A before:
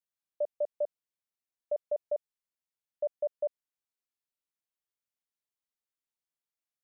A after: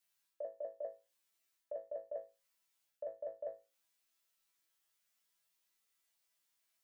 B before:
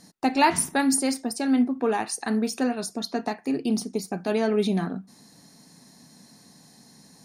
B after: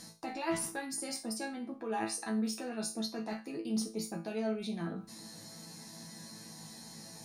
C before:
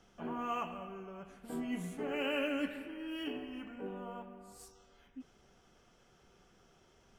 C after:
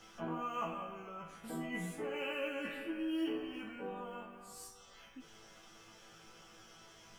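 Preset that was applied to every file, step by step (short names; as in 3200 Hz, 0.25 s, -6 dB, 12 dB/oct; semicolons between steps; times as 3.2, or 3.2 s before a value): limiter -19.5 dBFS; reverse; compressor 6:1, threshold -37 dBFS; reverse; resonator bank A2 fifth, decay 0.28 s; mismatched tape noise reduction encoder only; gain +15 dB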